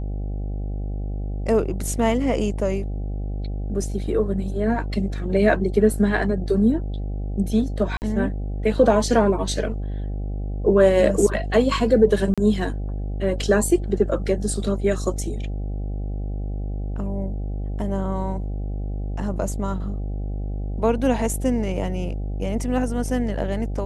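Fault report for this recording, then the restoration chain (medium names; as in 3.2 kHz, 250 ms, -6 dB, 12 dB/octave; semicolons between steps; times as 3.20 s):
buzz 50 Hz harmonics 16 -27 dBFS
7.97–8.02 s: dropout 49 ms
12.34–12.38 s: dropout 36 ms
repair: de-hum 50 Hz, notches 16; interpolate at 7.97 s, 49 ms; interpolate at 12.34 s, 36 ms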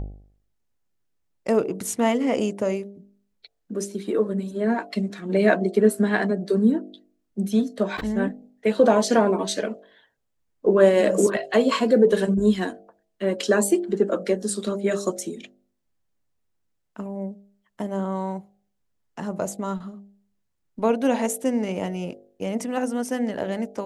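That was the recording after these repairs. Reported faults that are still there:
nothing left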